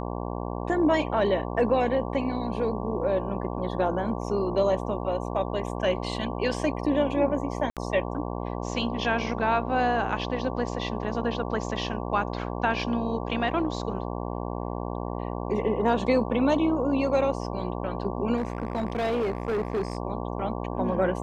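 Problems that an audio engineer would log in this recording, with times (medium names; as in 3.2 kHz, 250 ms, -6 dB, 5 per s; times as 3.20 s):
buzz 60 Hz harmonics 19 -32 dBFS
7.70–7.77 s: dropout 67 ms
18.36–19.97 s: clipped -23 dBFS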